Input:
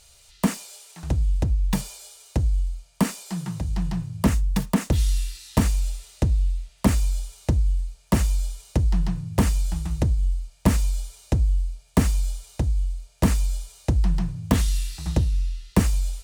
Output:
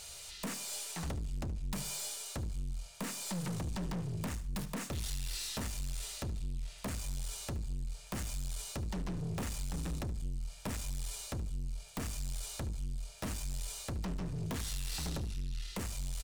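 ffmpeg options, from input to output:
-filter_complex "[0:a]lowshelf=f=110:g=-8,bandreject=f=50:t=h:w=6,bandreject=f=100:t=h:w=6,bandreject=f=150:t=h:w=6,acompressor=threshold=0.0251:ratio=6,aeval=exprs='(tanh(126*val(0)+0.25)-tanh(0.25))/126':c=same,atempo=1,asplit=2[s0][s1];[s1]aecho=0:1:73|146|219:0.15|0.0464|0.0144[s2];[s0][s2]amix=inputs=2:normalize=0,volume=2.24"

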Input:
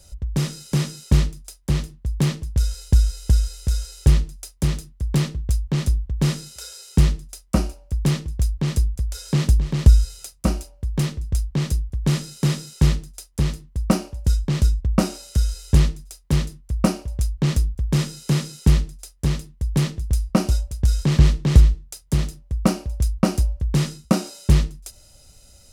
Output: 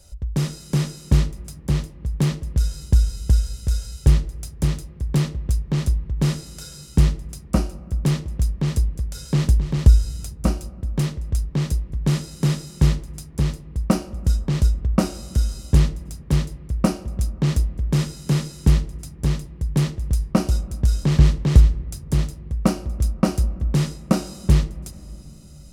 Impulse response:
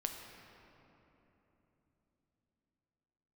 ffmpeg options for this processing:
-filter_complex "[0:a]asplit=2[s0][s1];[1:a]atrim=start_sample=2205,lowpass=2100[s2];[s1][s2]afir=irnorm=-1:irlink=0,volume=0.282[s3];[s0][s3]amix=inputs=2:normalize=0,volume=0.794"

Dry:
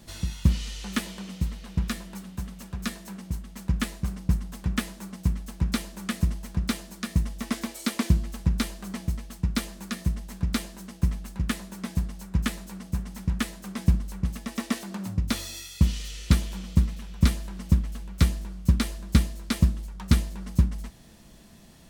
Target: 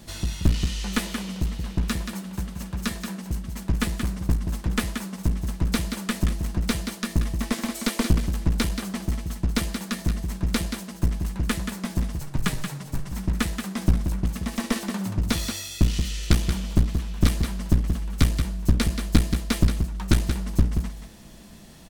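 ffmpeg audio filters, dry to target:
-filter_complex "[0:a]aecho=1:1:179:0.398,aeval=exprs='clip(val(0),-1,0.0422)':c=same,asettb=1/sr,asplit=3[s0][s1][s2];[s0]atrim=end=12.194[s3];[s1]atrim=start=12.19:end=13.13,asetpts=PTS-STARTPTS,afade=t=in:d=0.004:c=qsin,afade=t=out:st=0.936:d=0.004:c=qsin,afreqshift=-47[s4];[s2]atrim=start=13.126[s5];[s3][s4]acrossfade=d=0.004:c1=hsin:c2=qsin[s6];[s6][s5]acrossfade=d=0.004:c1=qsin:c2=hsin,volume=1.68"

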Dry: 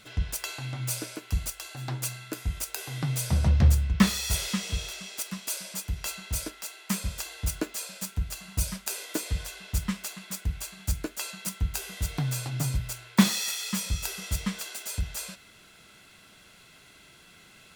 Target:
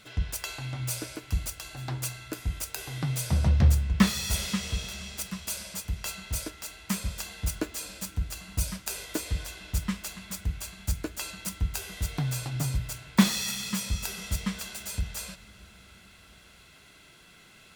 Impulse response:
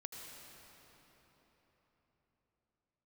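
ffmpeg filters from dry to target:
-filter_complex "[0:a]asplit=2[s0][s1];[1:a]atrim=start_sample=2205,asetrate=40131,aresample=44100,lowpass=6800[s2];[s1][s2]afir=irnorm=-1:irlink=0,volume=0.237[s3];[s0][s3]amix=inputs=2:normalize=0,volume=0.841"

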